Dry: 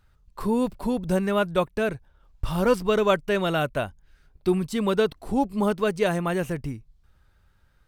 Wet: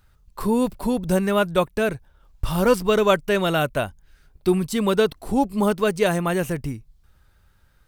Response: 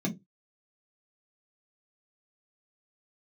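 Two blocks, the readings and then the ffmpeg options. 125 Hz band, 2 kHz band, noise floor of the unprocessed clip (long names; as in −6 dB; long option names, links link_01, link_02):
+3.0 dB, +3.5 dB, −62 dBFS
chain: -af "highshelf=frequency=7100:gain=7.5,volume=3dB"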